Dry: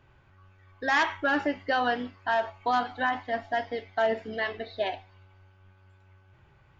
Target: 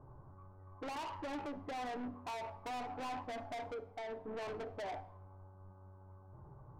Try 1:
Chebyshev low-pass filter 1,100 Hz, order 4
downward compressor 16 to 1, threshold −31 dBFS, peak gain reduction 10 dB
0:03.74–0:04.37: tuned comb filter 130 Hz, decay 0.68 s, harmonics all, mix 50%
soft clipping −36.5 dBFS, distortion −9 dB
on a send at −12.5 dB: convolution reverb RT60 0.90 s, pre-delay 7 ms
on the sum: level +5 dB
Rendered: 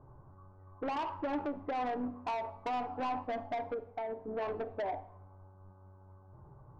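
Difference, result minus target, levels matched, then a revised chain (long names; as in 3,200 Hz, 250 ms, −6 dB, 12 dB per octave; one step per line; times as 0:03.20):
soft clipping: distortion −6 dB
Chebyshev low-pass filter 1,100 Hz, order 4
downward compressor 16 to 1, threshold −31 dBFS, peak gain reduction 10 dB
0:03.74–0:04.37: tuned comb filter 130 Hz, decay 0.68 s, harmonics all, mix 50%
soft clipping −45.5 dBFS, distortion −4 dB
on a send at −12.5 dB: convolution reverb RT60 0.90 s, pre-delay 7 ms
on the sum: level +5 dB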